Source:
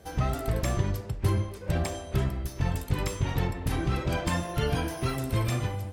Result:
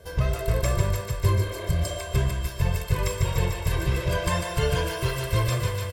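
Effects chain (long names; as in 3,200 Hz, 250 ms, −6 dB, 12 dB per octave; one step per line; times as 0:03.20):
comb filter 1.9 ms, depth 92%
on a send: feedback echo with a high-pass in the loop 148 ms, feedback 83%, high-pass 640 Hz, level −5.5 dB
on the sum: healed spectral selection 0:01.41–0:01.93, 290–4,100 Hz both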